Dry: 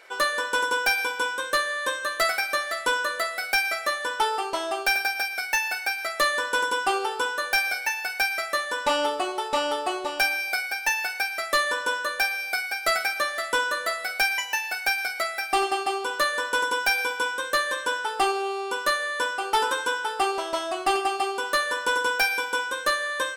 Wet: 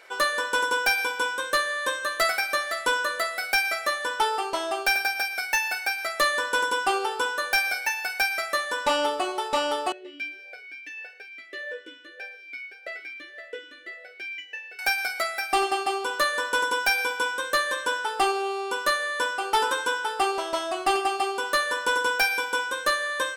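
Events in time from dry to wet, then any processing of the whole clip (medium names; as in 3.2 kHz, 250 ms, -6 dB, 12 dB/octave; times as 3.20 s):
9.92–14.79 s: talking filter e-i 1.7 Hz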